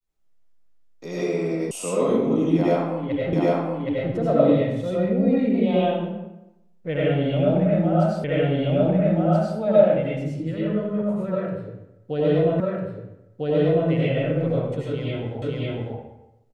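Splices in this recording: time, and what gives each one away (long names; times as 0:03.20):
0:01.71: cut off before it has died away
0:03.33: the same again, the last 0.77 s
0:08.24: the same again, the last 1.33 s
0:12.60: the same again, the last 1.3 s
0:15.42: the same again, the last 0.55 s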